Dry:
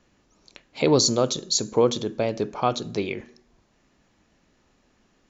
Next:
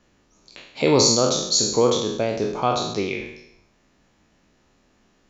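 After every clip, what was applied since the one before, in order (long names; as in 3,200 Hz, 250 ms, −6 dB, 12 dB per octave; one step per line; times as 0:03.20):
peak hold with a decay on every bin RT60 0.79 s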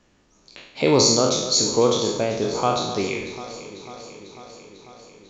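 delay that swaps between a low-pass and a high-pass 248 ms, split 2,200 Hz, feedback 82%, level −13 dB
A-law companding 128 kbit/s 16,000 Hz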